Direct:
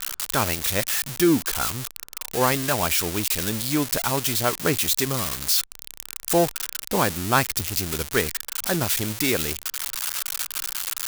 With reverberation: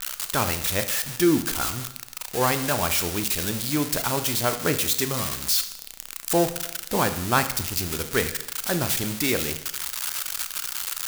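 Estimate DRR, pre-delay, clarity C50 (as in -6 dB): 9.0 dB, 27 ms, 11.5 dB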